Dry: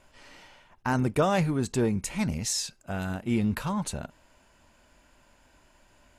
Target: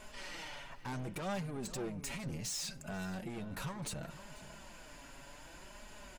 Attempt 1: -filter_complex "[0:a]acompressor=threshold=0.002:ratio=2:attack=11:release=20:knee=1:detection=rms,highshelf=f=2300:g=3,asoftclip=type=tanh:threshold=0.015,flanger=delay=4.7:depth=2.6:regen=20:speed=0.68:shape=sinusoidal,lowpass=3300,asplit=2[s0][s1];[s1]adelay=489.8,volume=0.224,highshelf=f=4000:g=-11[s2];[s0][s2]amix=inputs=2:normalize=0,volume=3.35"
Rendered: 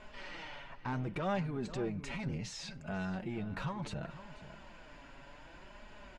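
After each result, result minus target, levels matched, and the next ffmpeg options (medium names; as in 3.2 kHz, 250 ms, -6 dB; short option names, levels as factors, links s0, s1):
4 kHz band -5.5 dB; saturation: distortion -7 dB
-filter_complex "[0:a]acompressor=threshold=0.002:ratio=2:attack=11:release=20:knee=1:detection=rms,highshelf=f=2300:g=3,asoftclip=type=tanh:threshold=0.015,flanger=delay=4.7:depth=2.6:regen=20:speed=0.68:shape=sinusoidal,asplit=2[s0][s1];[s1]adelay=489.8,volume=0.224,highshelf=f=4000:g=-11[s2];[s0][s2]amix=inputs=2:normalize=0,volume=3.35"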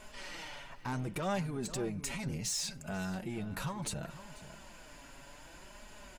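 saturation: distortion -7 dB
-filter_complex "[0:a]acompressor=threshold=0.002:ratio=2:attack=11:release=20:knee=1:detection=rms,highshelf=f=2300:g=3,asoftclip=type=tanh:threshold=0.00631,flanger=delay=4.7:depth=2.6:regen=20:speed=0.68:shape=sinusoidal,asplit=2[s0][s1];[s1]adelay=489.8,volume=0.224,highshelf=f=4000:g=-11[s2];[s0][s2]amix=inputs=2:normalize=0,volume=3.35"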